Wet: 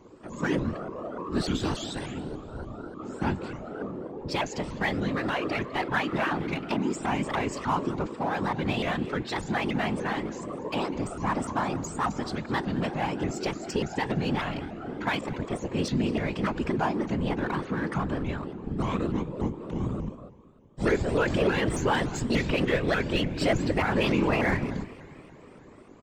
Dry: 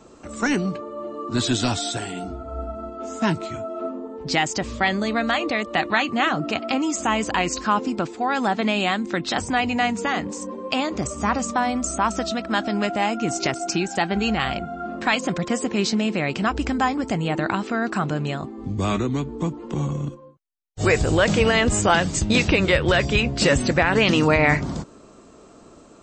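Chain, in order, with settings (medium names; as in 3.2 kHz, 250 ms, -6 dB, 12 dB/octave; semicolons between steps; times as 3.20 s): treble shelf 3.5 kHz -9.5 dB; band-stop 6.1 kHz, Q 5.9; comb of notches 680 Hz; in parallel at -4.5 dB: hard clipper -28 dBFS, distortion -5 dB; on the sum: Schroeder reverb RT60 3.8 s, combs from 29 ms, DRR 17.5 dB; 15.17–15.70 s: ring modulator 23 Hz -> 130 Hz; on a send: delay 204 ms -18.5 dB; on the sum: whisper effect; vibrato with a chosen wave saw up 3.4 Hz, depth 250 cents; trim -6.5 dB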